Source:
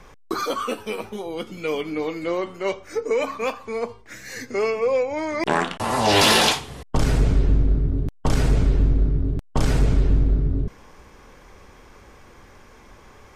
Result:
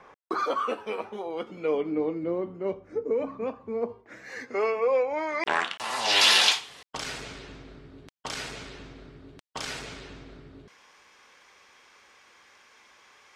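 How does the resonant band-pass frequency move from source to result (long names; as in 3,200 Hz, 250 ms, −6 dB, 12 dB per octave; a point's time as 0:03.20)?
resonant band-pass, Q 0.68
0:01.35 910 Hz
0:02.33 190 Hz
0:03.67 190 Hz
0:04.38 1,000 Hz
0:05.12 1,000 Hz
0:05.76 3,500 Hz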